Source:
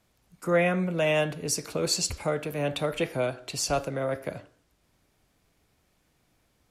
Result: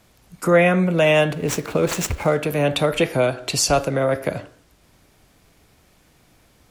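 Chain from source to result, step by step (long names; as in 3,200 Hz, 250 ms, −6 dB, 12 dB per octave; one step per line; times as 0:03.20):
0:01.33–0:02.42: running median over 9 samples
in parallel at +0.5 dB: downward compressor, threshold −34 dBFS, peak gain reduction 15 dB
on the sum: level +6.5 dB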